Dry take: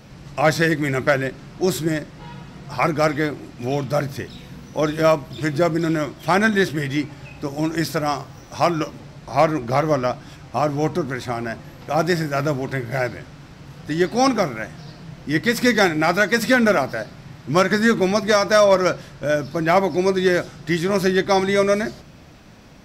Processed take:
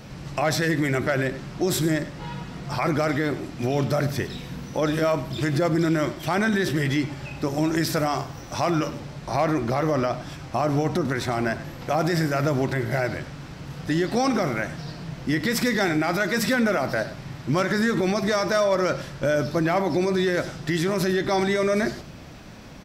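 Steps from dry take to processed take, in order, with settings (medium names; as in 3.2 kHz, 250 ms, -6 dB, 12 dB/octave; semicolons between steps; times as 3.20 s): peak limiter -17.5 dBFS, peak gain reduction 10.5 dB; on a send: delay 99 ms -15 dB; on the sum: trim +3 dB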